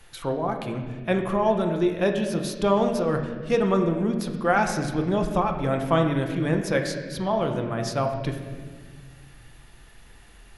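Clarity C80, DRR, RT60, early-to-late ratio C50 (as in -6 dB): 7.5 dB, 3.0 dB, 1.6 s, 6.0 dB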